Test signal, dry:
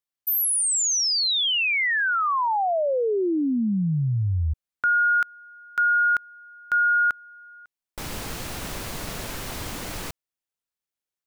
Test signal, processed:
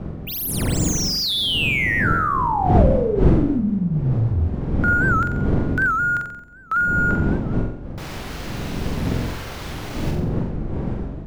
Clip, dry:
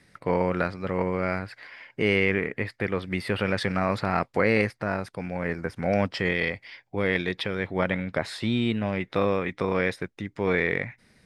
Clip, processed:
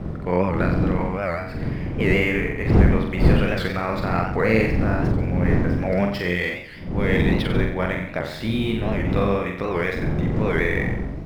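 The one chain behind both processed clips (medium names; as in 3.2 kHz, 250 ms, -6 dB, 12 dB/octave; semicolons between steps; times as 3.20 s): median filter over 5 samples; wind noise 200 Hz -25 dBFS; on a send: flutter echo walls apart 7.7 m, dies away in 0.65 s; on the sum: warped record 78 rpm, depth 160 cents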